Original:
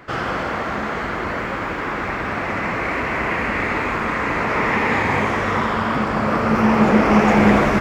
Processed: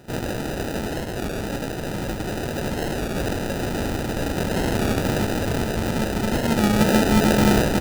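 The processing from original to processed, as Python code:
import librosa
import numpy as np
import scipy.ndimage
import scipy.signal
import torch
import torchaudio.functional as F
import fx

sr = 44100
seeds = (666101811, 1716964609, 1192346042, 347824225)

y = fx.sample_hold(x, sr, seeds[0], rate_hz=1100.0, jitter_pct=0)
y = fx.record_warp(y, sr, rpm=33.33, depth_cents=100.0)
y = y * 10.0 ** (-3.0 / 20.0)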